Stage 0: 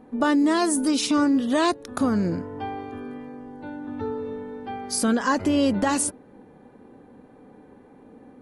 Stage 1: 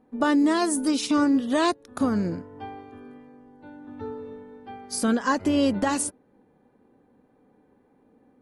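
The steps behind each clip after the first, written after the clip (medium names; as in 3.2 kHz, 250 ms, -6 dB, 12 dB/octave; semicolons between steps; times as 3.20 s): upward expansion 1.5:1, over -41 dBFS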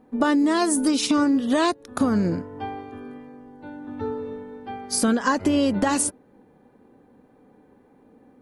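compression, threshold -23 dBFS, peak gain reduction 6 dB; trim +6 dB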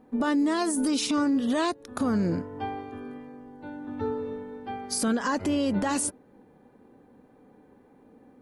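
peak limiter -17.5 dBFS, peak gain reduction 8.5 dB; trim -1 dB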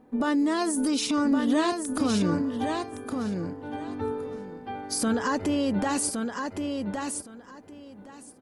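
feedback delay 1115 ms, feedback 17%, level -5 dB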